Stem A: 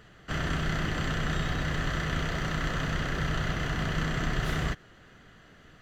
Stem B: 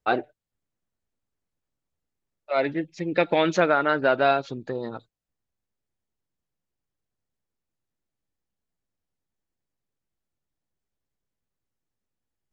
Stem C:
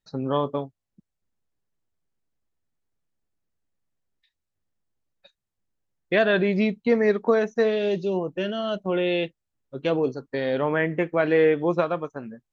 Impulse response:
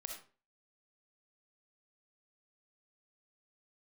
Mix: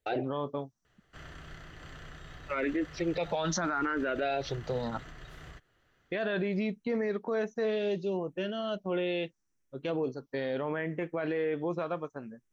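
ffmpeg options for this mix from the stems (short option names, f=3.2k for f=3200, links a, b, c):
-filter_complex "[0:a]alimiter=limit=-21dB:level=0:latency=1:release=246,equalizer=f=200:t=o:w=0.77:g=-7,adelay=850,volume=-15dB[a];[1:a]equalizer=f=5.8k:w=5.6:g=13,bandreject=f=50:t=h:w=6,bandreject=f=100:t=h:w=6,bandreject=f=150:t=h:w=6,asplit=2[b][c];[c]afreqshift=0.71[d];[b][d]amix=inputs=2:normalize=1,volume=3dB[e];[2:a]volume=-6.5dB[f];[a][e][f]amix=inputs=3:normalize=0,alimiter=limit=-23dB:level=0:latency=1:release=24"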